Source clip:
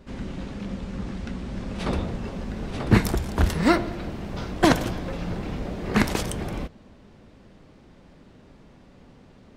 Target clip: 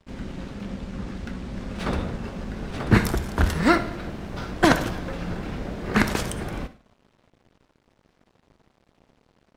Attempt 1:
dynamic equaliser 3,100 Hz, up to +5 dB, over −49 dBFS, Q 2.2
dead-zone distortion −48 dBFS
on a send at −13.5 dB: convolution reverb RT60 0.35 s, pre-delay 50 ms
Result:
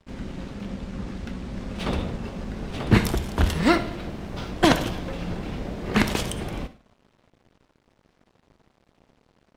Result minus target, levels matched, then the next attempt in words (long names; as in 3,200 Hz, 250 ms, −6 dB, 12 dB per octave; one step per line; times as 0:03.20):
4,000 Hz band +3.0 dB
dynamic equaliser 1,500 Hz, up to +5 dB, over −49 dBFS, Q 2.2
dead-zone distortion −48 dBFS
on a send at −13.5 dB: convolution reverb RT60 0.35 s, pre-delay 50 ms